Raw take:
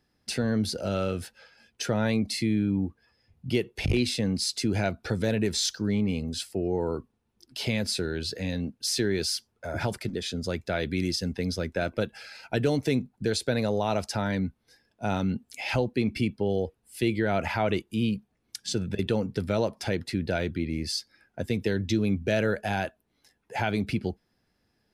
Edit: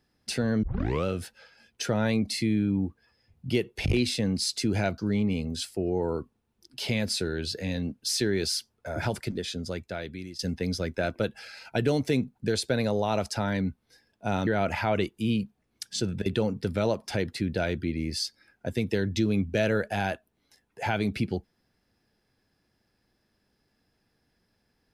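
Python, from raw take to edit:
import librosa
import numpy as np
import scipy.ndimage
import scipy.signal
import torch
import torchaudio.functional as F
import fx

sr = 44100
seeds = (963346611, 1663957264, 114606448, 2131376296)

y = fx.edit(x, sr, fx.tape_start(start_s=0.63, length_s=0.42),
    fx.cut(start_s=4.98, length_s=0.78),
    fx.fade_out_to(start_s=10.12, length_s=1.05, floor_db=-17.0),
    fx.cut(start_s=15.25, length_s=1.95), tone=tone)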